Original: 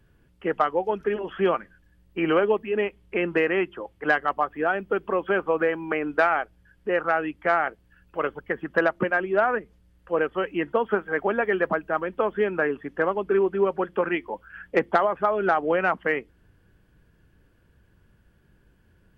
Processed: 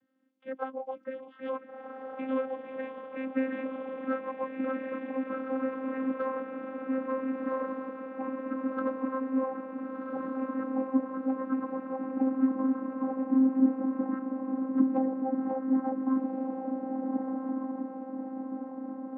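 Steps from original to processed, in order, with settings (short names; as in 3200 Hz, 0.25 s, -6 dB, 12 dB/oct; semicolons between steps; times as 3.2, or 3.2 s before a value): gliding pitch shift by -12 st starting unshifted; diffused feedback echo 1.446 s, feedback 57%, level -3 dB; vocoder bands 16, saw 263 Hz; gain -6 dB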